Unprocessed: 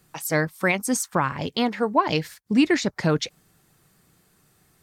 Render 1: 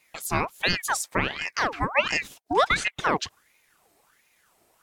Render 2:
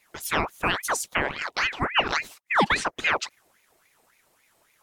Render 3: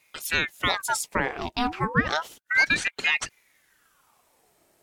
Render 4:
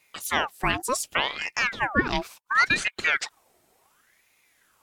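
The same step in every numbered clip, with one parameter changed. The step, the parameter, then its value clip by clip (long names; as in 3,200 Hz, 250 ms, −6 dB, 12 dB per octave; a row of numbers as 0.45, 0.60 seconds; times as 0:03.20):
ring modulator whose carrier an LFO sweeps, at: 1.4, 3.6, 0.32, 0.69 Hertz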